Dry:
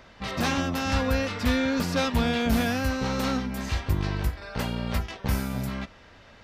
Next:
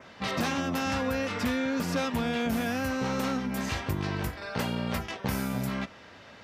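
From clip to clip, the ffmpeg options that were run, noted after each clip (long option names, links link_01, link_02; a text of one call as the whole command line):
ffmpeg -i in.wav -af "highpass=120,adynamicequalizer=threshold=0.00316:dfrequency=4200:dqfactor=2.2:tfrequency=4200:tqfactor=2.2:attack=5:release=100:ratio=0.375:range=2.5:mode=cutabove:tftype=bell,acompressor=threshold=-28dB:ratio=6,volume=2.5dB" out.wav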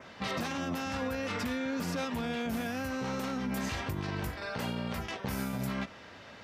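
ffmpeg -i in.wav -af "alimiter=level_in=1.5dB:limit=-24dB:level=0:latency=1:release=45,volume=-1.5dB" out.wav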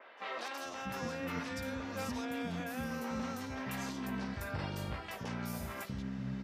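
ffmpeg -i in.wav -filter_complex "[0:a]acrossover=split=370|3400[link_01][link_02][link_03];[link_03]adelay=170[link_04];[link_01]adelay=650[link_05];[link_05][link_02][link_04]amix=inputs=3:normalize=0,volume=-3.5dB" out.wav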